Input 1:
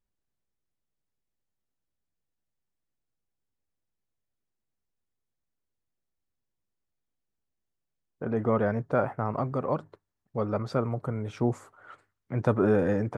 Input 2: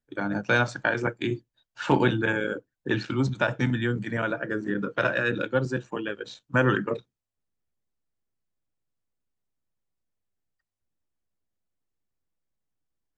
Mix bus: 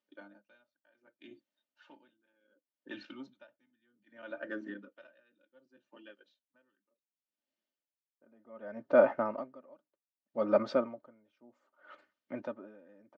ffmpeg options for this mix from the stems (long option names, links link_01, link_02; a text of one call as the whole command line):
ffmpeg -i stem1.wav -i stem2.wav -filter_complex "[0:a]volume=0.5dB[link_01];[1:a]aeval=exprs='0.376*(cos(1*acos(clip(val(0)/0.376,-1,1)))-cos(1*PI/2))+0.00668*(cos(6*acos(clip(val(0)/0.376,-1,1)))-cos(6*PI/2))':channel_layout=same,volume=-11dB,afade=type=in:start_time=3.64:duration=0.5:silence=0.473151,afade=type=out:start_time=5.37:duration=0.32:silence=0.237137[link_02];[link_01][link_02]amix=inputs=2:normalize=0,highpass=frequency=190:width=0.5412,highpass=frequency=190:width=1.3066,equalizer=frequency=360:width_type=q:width=4:gain=-5,equalizer=frequency=550:width_type=q:width=4:gain=5,equalizer=frequency=1000:width_type=q:width=4:gain=-3,equalizer=frequency=3000:width_type=q:width=4:gain=5,lowpass=frequency=5400:width=0.5412,lowpass=frequency=5400:width=1.3066,aecho=1:1:3.3:0.68,aeval=exprs='val(0)*pow(10,-35*(0.5-0.5*cos(2*PI*0.66*n/s))/20)':channel_layout=same" out.wav